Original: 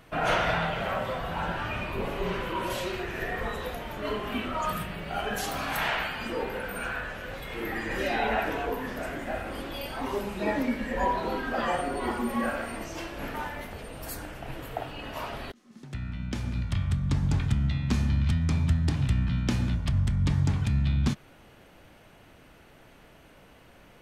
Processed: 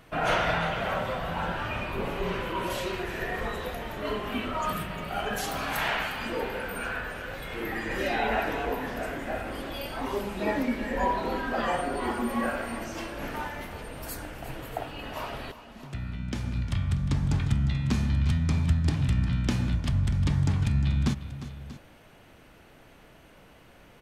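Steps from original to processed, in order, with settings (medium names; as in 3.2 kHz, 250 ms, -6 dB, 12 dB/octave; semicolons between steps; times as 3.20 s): multi-tap echo 354/637 ms -13.5/-16.5 dB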